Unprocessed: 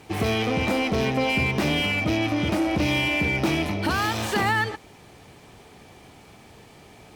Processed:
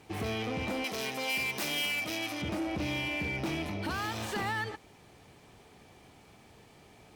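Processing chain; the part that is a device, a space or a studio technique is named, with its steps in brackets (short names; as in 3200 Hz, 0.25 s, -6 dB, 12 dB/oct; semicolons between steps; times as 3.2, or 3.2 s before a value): clipper into limiter (hard clip -18 dBFS, distortion -20 dB; limiter -20 dBFS, peak gain reduction 2 dB); 0.84–2.42 RIAA curve recording; gain -8 dB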